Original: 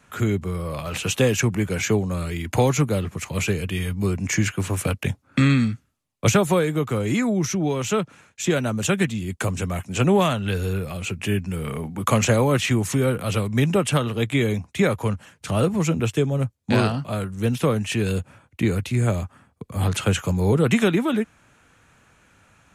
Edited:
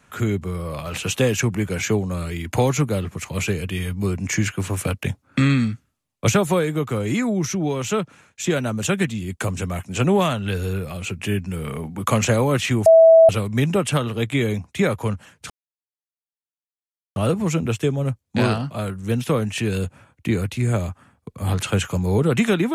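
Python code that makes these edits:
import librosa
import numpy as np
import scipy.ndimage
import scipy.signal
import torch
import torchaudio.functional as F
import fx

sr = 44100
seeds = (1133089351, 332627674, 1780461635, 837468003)

y = fx.edit(x, sr, fx.bleep(start_s=12.86, length_s=0.43, hz=653.0, db=-6.5),
    fx.insert_silence(at_s=15.5, length_s=1.66), tone=tone)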